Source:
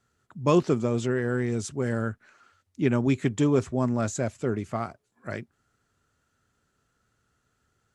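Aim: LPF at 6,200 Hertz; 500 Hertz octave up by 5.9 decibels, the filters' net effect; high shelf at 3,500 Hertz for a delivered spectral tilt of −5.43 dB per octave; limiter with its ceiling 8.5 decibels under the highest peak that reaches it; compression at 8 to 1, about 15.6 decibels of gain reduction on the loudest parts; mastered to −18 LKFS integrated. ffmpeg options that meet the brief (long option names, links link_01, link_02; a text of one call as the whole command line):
ffmpeg -i in.wav -af "lowpass=6200,equalizer=frequency=500:width_type=o:gain=7.5,highshelf=frequency=3500:gain=6,acompressor=threshold=-29dB:ratio=8,volume=19dB,alimiter=limit=-7dB:level=0:latency=1" out.wav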